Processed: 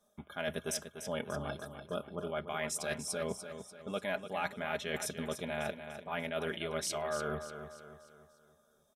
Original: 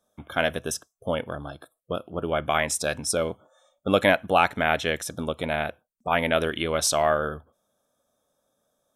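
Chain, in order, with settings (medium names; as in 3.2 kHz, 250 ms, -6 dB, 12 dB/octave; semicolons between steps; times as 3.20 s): comb 4.9 ms, depth 60%; reverse; compression 6:1, threshold -33 dBFS, peak gain reduction 19 dB; reverse; feedback delay 294 ms, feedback 45%, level -9.5 dB; trim -1.5 dB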